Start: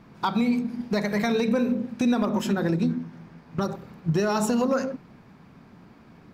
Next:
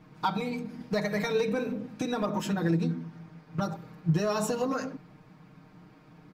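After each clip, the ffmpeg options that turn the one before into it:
ffmpeg -i in.wav -af "aecho=1:1:6.5:0.96,volume=-6dB" out.wav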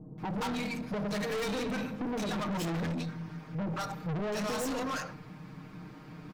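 ffmpeg -i in.wav -filter_complex "[0:a]acrossover=split=660[link_01][link_02];[link_02]adelay=180[link_03];[link_01][link_03]amix=inputs=2:normalize=0,aeval=exprs='(tanh(89.1*val(0)+0.15)-tanh(0.15))/89.1':channel_layout=same,volume=7.5dB" out.wav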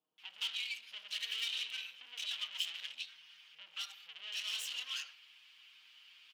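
ffmpeg -i in.wav -af "highpass=frequency=3000:width_type=q:width=8.2,volume=-5.5dB" out.wav

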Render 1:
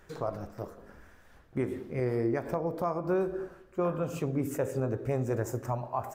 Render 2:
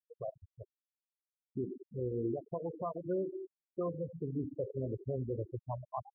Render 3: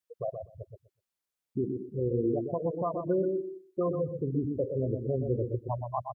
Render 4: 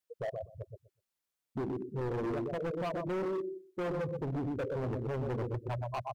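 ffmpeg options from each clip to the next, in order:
ffmpeg -i in.wav -filter_complex "[0:a]asplit=5[link_01][link_02][link_03][link_04][link_05];[link_02]adelay=81,afreqshift=-70,volume=-16.5dB[link_06];[link_03]adelay=162,afreqshift=-140,volume=-22.9dB[link_07];[link_04]adelay=243,afreqshift=-210,volume=-29.3dB[link_08];[link_05]adelay=324,afreqshift=-280,volume=-35.6dB[link_09];[link_01][link_06][link_07][link_08][link_09]amix=inputs=5:normalize=0,afftfilt=real='re*gte(hypot(re,im),0.1)':imag='im*gte(hypot(re,im),0.1)':win_size=1024:overlap=0.75,volume=-6dB" out.wav
ffmpeg -i in.wav -filter_complex "[0:a]asplit=2[link_01][link_02];[link_02]adelay=124,lowpass=frequency=980:poles=1,volume=-5dB,asplit=2[link_03][link_04];[link_04]adelay=124,lowpass=frequency=980:poles=1,volume=0.16,asplit=2[link_05][link_06];[link_06]adelay=124,lowpass=frequency=980:poles=1,volume=0.16[link_07];[link_01][link_03][link_05][link_07]amix=inputs=4:normalize=0,volume=6.5dB" out.wav
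ffmpeg -i in.wav -af "asoftclip=type=hard:threshold=-32dB" out.wav

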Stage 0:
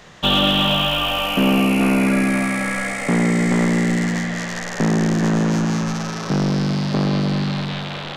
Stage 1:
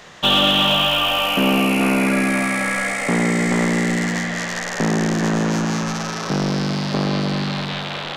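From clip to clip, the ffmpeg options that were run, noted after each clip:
ffmpeg -i in.wav -filter_complex "[0:a]lowshelf=frequency=230:gain=-8.5,asplit=2[link_01][link_02];[link_02]asoftclip=type=tanh:threshold=-17.5dB,volume=-7dB[link_03];[link_01][link_03]amix=inputs=2:normalize=0" out.wav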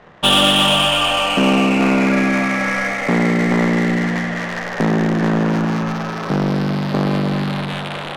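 ffmpeg -i in.wav -filter_complex "[0:a]asplit=2[link_01][link_02];[link_02]acrusher=bits=5:mix=0:aa=0.000001,volume=-8dB[link_03];[link_01][link_03]amix=inputs=2:normalize=0,adynamicsmooth=sensitivity=1:basefreq=1500" out.wav

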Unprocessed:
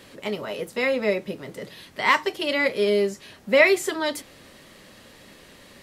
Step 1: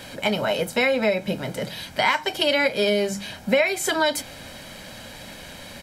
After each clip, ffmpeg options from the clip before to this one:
ffmpeg -i in.wav -af "bandreject=frequency=50:width_type=h:width=6,bandreject=frequency=100:width_type=h:width=6,bandreject=frequency=150:width_type=h:width=6,bandreject=frequency=200:width_type=h:width=6,aecho=1:1:1.3:0.58,acompressor=threshold=-26dB:ratio=6,volume=8.5dB" out.wav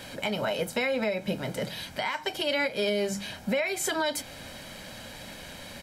ffmpeg -i in.wav -af "alimiter=limit=-15.5dB:level=0:latency=1:release=207,volume=-3dB" out.wav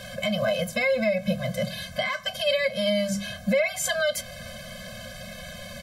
ffmpeg -i in.wav -af "afftfilt=real='re*eq(mod(floor(b*sr/1024/250),2),0)':imag='im*eq(mod(floor(b*sr/1024/250),2),0)':win_size=1024:overlap=0.75,volume=6dB" out.wav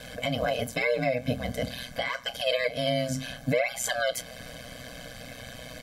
ffmpeg -i in.wav -af "aeval=exprs='val(0)*sin(2*PI*62*n/s)':channel_layout=same" out.wav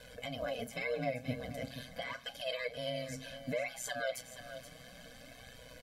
ffmpeg -i in.wav -af "flanger=delay=2:depth=5.9:regen=41:speed=0.35:shape=sinusoidal,aecho=1:1:478:0.251,volume=-7dB" out.wav

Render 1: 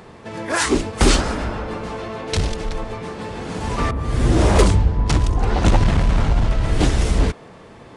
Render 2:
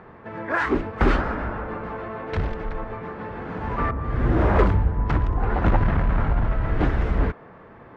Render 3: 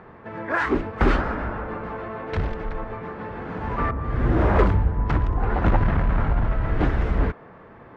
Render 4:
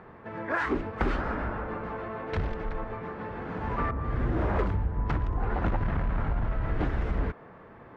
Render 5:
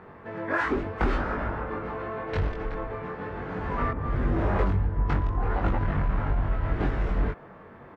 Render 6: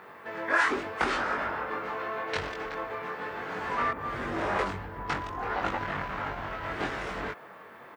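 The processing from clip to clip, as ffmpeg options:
ffmpeg -i in.wav -af "lowpass=frequency=1600:width_type=q:width=1.6,volume=-4.5dB" out.wav
ffmpeg -i in.wav -af anull out.wav
ffmpeg -i in.wav -af "acompressor=threshold=-20dB:ratio=5,volume=-3.5dB" out.wav
ffmpeg -i in.wav -filter_complex "[0:a]asplit=2[link_01][link_02];[link_02]adelay=21,volume=-2dB[link_03];[link_01][link_03]amix=inputs=2:normalize=0" out.wav
ffmpeg -i in.wav -af "highpass=frequency=730:poles=1,aemphasis=mode=production:type=75kf,volume=2.5dB" out.wav

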